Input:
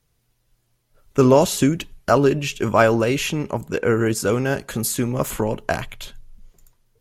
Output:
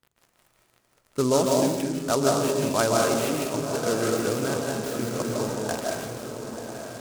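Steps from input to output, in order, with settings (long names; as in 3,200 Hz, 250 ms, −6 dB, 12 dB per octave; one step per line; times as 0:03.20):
high-pass filter 41 Hz
low-shelf EQ 86 Hz −10.5 dB
surface crackle 54 per second −32 dBFS
high-frequency loss of the air 75 metres
feedback delay with all-pass diffusion 1,018 ms, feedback 51%, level −8 dB
convolution reverb RT60 1.1 s, pre-delay 115 ms, DRR −0.5 dB
short delay modulated by noise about 5,900 Hz, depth 0.067 ms
level −8 dB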